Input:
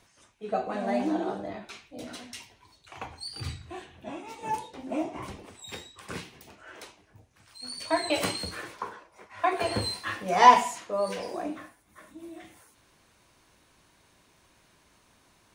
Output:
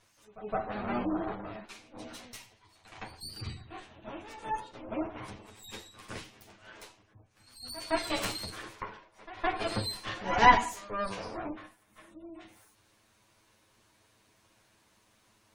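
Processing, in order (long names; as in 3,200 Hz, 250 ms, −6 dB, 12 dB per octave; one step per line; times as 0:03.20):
lower of the sound and its delayed copy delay 9.3 ms
echo ahead of the sound 164 ms −17 dB
gate on every frequency bin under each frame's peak −30 dB strong
level −2.5 dB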